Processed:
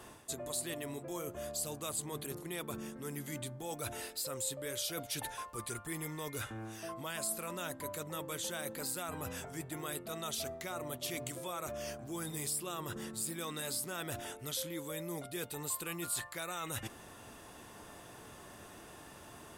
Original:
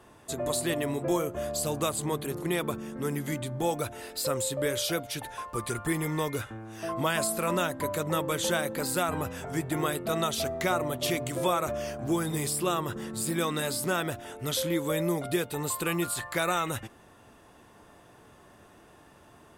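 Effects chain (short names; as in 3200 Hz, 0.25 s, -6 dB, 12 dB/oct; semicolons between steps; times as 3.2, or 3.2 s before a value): reverse; compressor 6:1, threshold -42 dBFS, peak gain reduction 19 dB; reverse; high shelf 3200 Hz +8 dB; gain +1.5 dB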